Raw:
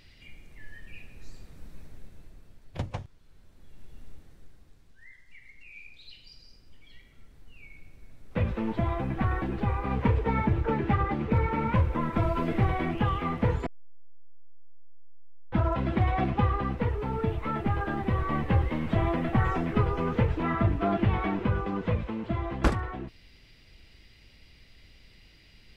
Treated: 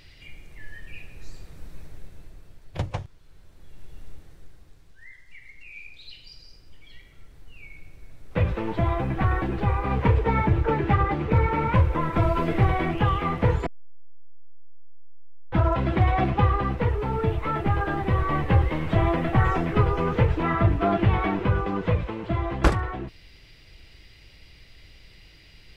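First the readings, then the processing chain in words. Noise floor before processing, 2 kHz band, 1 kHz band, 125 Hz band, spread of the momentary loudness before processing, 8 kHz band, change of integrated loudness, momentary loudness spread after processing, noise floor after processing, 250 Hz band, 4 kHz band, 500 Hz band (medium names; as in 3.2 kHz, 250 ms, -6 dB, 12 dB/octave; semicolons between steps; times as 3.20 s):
-56 dBFS, +5.0 dB, +5.0 dB, +5.0 dB, 11 LU, no reading, +4.5 dB, 11 LU, -52 dBFS, +2.0 dB, +5.0 dB, +5.0 dB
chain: peaking EQ 230 Hz -13.5 dB 0.2 oct; trim +5 dB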